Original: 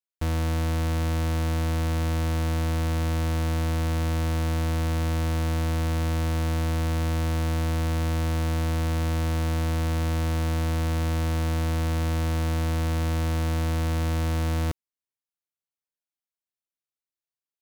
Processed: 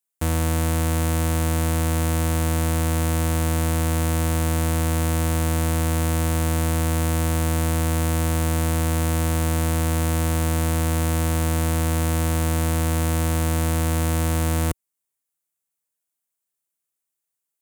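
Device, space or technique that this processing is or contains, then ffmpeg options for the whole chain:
budget condenser microphone: -af "highpass=70,highshelf=frequency=6400:width_type=q:width=1.5:gain=7.5,volume=5dB"

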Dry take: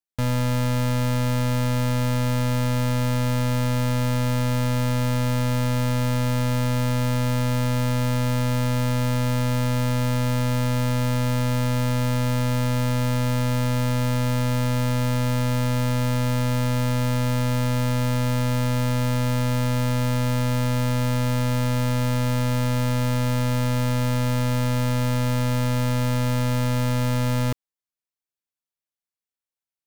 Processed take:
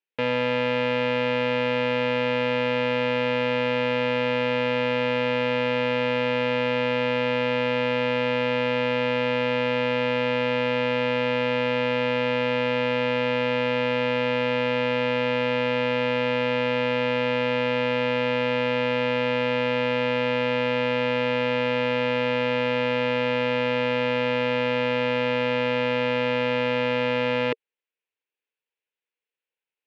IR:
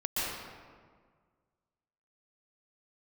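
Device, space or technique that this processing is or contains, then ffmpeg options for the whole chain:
phone earpiece: -af "highpass=410,equalizer=frequency=460:width_type=q:width=4:gain=9,equalizer=frequency=690:width_type=q:width=4:gain=-9,equalizer=frequency=1200:width_type=q:width=4:gain=-8,equalizer=frequency=2600:width_type=q:width=4:gain=6,lowpass=frequency=3200:width=0.5412,lowpass=frequency=3200:width=1.3066,volume=6dB"

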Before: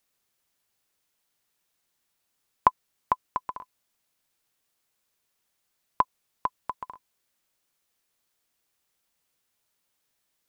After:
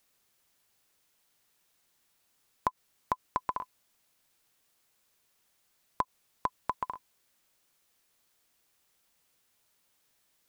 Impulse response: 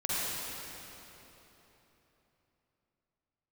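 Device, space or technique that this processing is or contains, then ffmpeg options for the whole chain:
de-esser from a sidechain: -filter_complex "[0:a]asplit=2[link_01][link_02];[link_02]highpass=frequency=4100:poles=1,apad=whole_len=462201[link_03];[link_01][link_03]sidechaincompress=threshold=-37dB:ratio=5:attack=1.3:release=95,volume=4.5dB"

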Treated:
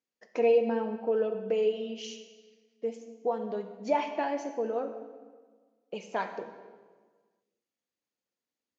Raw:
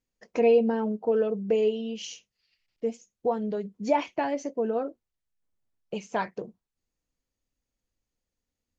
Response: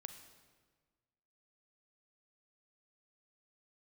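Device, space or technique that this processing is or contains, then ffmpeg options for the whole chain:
supermarket ceiling speaker: -filter_complex "[0:a]highpass=270,lowpass=6300[link_01];[1:a]atrim=start_sample=2205[link_02];[link_01][link_02]afir=irnorm=-1:irlink=0,volume=2.5dB"

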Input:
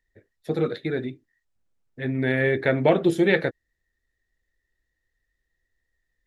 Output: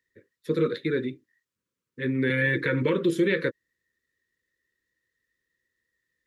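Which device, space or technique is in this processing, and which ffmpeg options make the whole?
PA system with an anti-feedback notch: -filter_complex "[0:a]asettb=1/sr,asplit=3[link_01][link_02][link_03];[link_01]atrim=end=2.294[link_04];[link_02]atrim=start=2.29:end=2.82,asetpts=PTS-STARTPTS,afade=type=in:duration=0.004:curve=qsin,afade=type=out:start_time=0.526:duration=0.004:curve=qsin,aecho=1:1:6.3:0.94,atrim=end_sample=23373[link_05];[link_03]atrim=start=2.816[link_06];[link_04][link_05]acrossfade=duration=0.004:curve1=hsin:curve2=qsin[link_07];[link_07][link_06]acrossfade=duration=0.004:curve1=qsin:curve2=hsin,highpass=140,asuperstop=centerf=730:order=12:qfactor=2,alimiter=limit=-15.5dB:level=0:latency=1:release=106,volume=1dB"

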